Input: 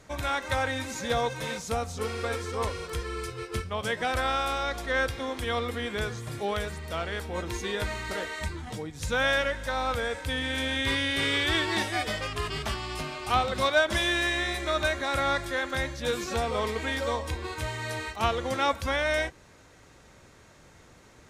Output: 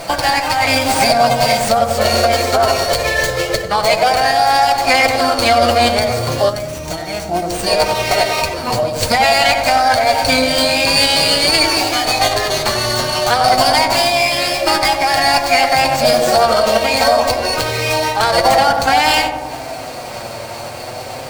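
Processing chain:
downward compressor 3 to 1, threshold −42 dBFS, peak gain reduction 17.5 dB
low-shelf EQ 68 Hz −7 dB
flanger 0.27 Hz, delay 5.9 ms, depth 3 ms, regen +18%
high-shelf EQ 3,100 Hz +8.5 dB
notch filter 2,600 Hz, Q 19
hollow resonant body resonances 530/3,300 Hz, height 15 dB, ringing for 25 ms
formants moved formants +5 semitones
on a send: feedback echo with a low-pass in the loop 93 ms, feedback 78%, low-pass 1,200 Hz, level −6 dB
on the sum: gain on a spectral selection 0:06.49–0:07.67, 370–5,500 Hz −10 dB
boost into a limiter +25 dB
windowed peak hold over 3 samples
level −1 dB

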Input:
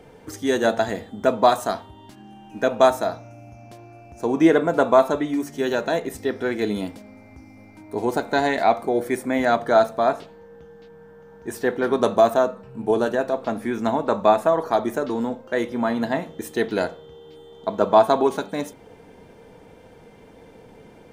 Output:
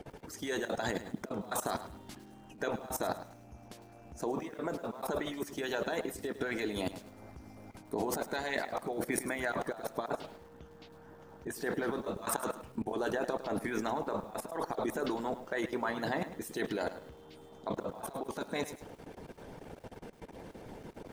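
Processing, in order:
output level in coarse steps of 16 dB
harmonic and percussive parts rebalanced harmonic −16 dB
compressor whose output falls as the input rises −38 dBFS, ratio −1
gain on a spectral selection 0:12.22–0:12.55, 800–12,000 Hz +8 dB
feedback echo at a low word length 105 ms, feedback 35%, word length 9 bits, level −12.5 dB

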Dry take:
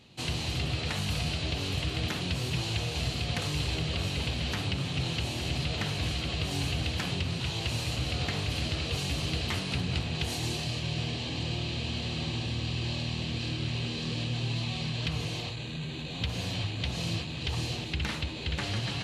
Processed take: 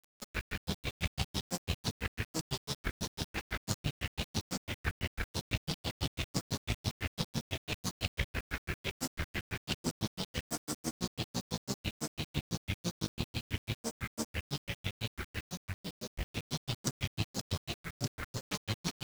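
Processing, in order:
harmonic generator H 4 −14 dB, 7 −42 dB, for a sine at −18.5 dBFS
granular cloud 86 ms, grains 6 per second, pitch spread up and down by 12 semitones
bit-depth reduction 8 bits, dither none

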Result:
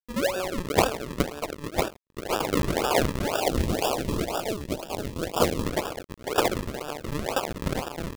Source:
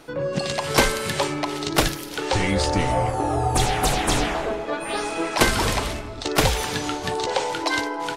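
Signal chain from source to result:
linear-prediction vocoder at 8 kHz pitch kept
high-pass filter 380 Hz 24 dB per octave
spectral tilt −3.5 dB per octave
sample-and-hold swept by an LFO 41×, swing 100% 2 Hz
dead-zone distortion −34 dBFS
0:03.36–0:05.66: auto-filter notch saw up 4.8 Hz 910–2,400 Hz

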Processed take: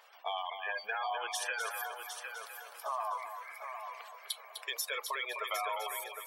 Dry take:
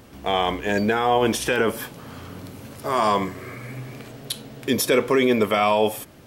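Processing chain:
high-pass filter 710 Hz 24 dB per octave
reverb reduction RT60 1.2 s
gate on every frequency bin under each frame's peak −15 dB strong
downward compressor, threshold −29 dBFS, peak gain reduction 9.5 dB
echo machine with several playback heads 253 ms, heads first and third, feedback 42%, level −8 dB
level −4.5 dB

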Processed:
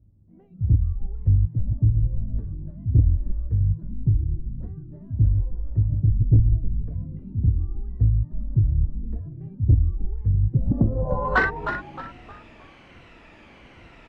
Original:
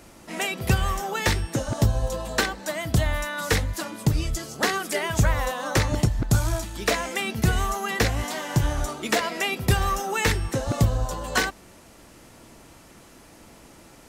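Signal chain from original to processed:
rippled gain that drifts along the octave scale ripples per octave 2, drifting −1.2 Hz, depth 7 dB
noise reduction from a noise print of the clip's start 8 dB
in parallel at 0 dB: downward compressor, threshold −35 dBFS, peak gain reduction 21 dB
on the sum: tape wow and flutter 21 cents
low-pass filter sweep 100 Hz → 2,600 Hz, 0:10.42–0:11.63
soft clipping −8.5 dBFS, distortion −17 dB
on a send: echo with shifted repeats 310 ms, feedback 36%, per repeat −100 Hz, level −8 dB

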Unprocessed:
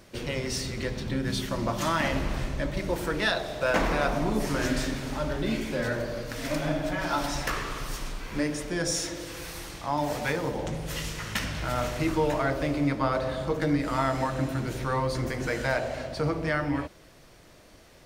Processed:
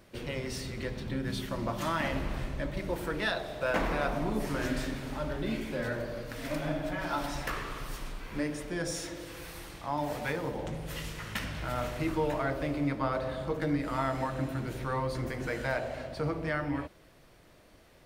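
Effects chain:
parametric band 6,100 Hz −5.5 dB 1 octave
level −4.5 dB

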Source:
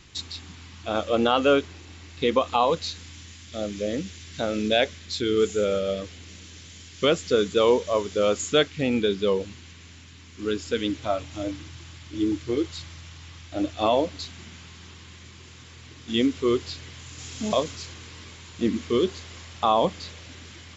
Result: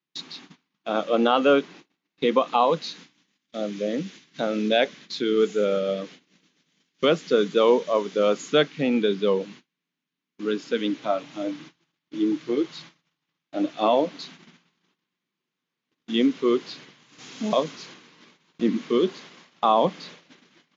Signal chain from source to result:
Chebyshev band-pass filter 150–6,600 Hz, order 5
noise gate −44 dBFS, range −35 dB
high-shelf EQ 5,200 Hz −10.5 dB
level +2 dB

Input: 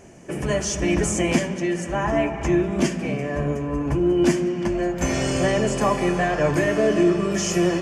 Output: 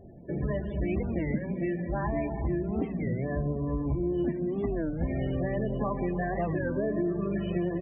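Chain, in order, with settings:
inverse Chebyshev low-pass filter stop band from 8,800 Hz, stop band 60 dB
low-shelf EQ 190 Hz +9 dB
downward compressor 5 to 1, threshold −20 dBFS, peak gain reduction 9.5 dB
spectral peaks only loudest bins 32
single-tap delay 854 ms −23 dB
wow of a warped record 33 1/3 rpm, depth 250 cents
level −6 dB

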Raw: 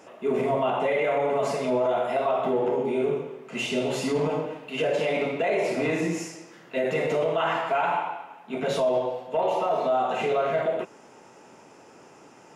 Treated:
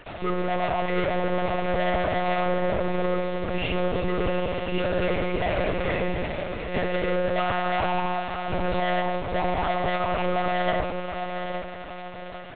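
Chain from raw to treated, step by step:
low-pass filter 2,700 Hz
comb filter 4.6 ms, depth 85%
in parallel at 0 dB: downward compressor 6 to 1, threshold −29 dBFS, peak gain reduction 13 dB
on the sum: soft clipping −23 dBFS, distortion −8 dB
bit reduction 6 bits
feedback delay with all-pass diffusion 776 ms, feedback 45%, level −6 dB
four-comb reverb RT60 1 s, combs from 26 ms, DRR 10.5 dB
one-pitch LPC vocoder at 8 kHz 180 Hz

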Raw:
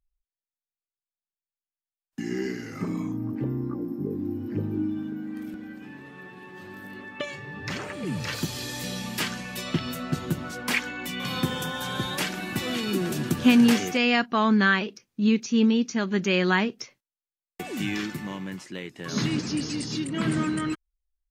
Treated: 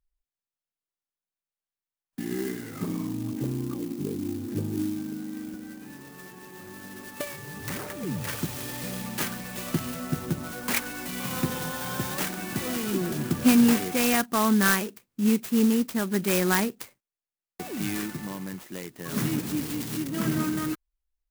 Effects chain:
converter with an unsteady clock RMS 0.072 ms
level −1 dB

